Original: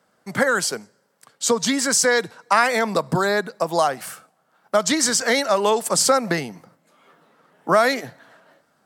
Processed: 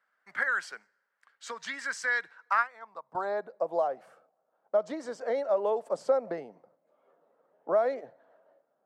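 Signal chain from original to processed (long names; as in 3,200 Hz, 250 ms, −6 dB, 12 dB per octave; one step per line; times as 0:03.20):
band-pass filter sweep 1,700 Hz → 560 Hz, 0:02.33–0:03.61
0:02.57–0:03.15: expander for the loud parts 2.5 to 1, over −28 dBFS
level −5 dB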